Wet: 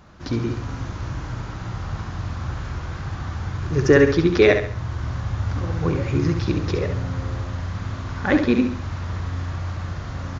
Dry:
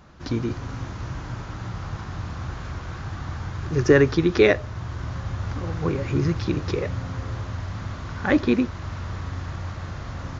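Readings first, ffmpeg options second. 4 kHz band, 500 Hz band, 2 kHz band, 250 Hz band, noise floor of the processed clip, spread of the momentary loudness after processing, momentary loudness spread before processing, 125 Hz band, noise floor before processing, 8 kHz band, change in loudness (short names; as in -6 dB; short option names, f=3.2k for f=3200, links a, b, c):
+2.0 dB, +2.0 dB, +2.0 dB, +2.0 dB, -33 dBFS, 14 LU, 15 LU, +3.0 dB, -36 dBFS, n/a, +2.5 dB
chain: -af "aecho=1:1:68|136|204|272:0.447|0.17|0.0645|0.0245,volume=1dB"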